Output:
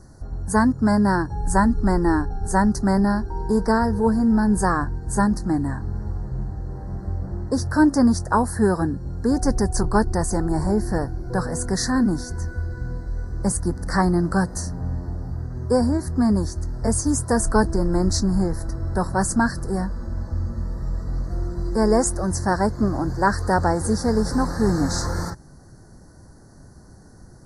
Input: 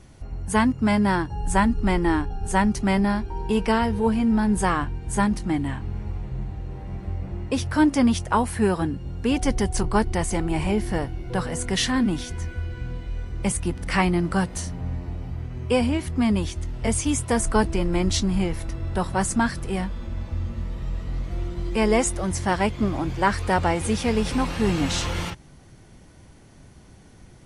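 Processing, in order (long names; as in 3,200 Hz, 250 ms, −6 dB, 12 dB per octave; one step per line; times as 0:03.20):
Chebyshev band-stop filter 1,700–4,500 Hz, order 3
level +2.5 dB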